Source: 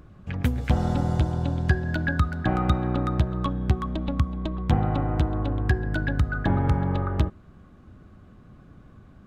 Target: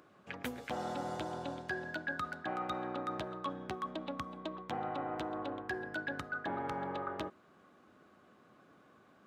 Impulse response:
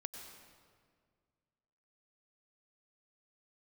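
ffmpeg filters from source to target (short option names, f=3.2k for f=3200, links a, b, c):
-af "highpass=410,areverse,acompressor=threshold=-32dB:ratio=4,areverse,volume=-3dB"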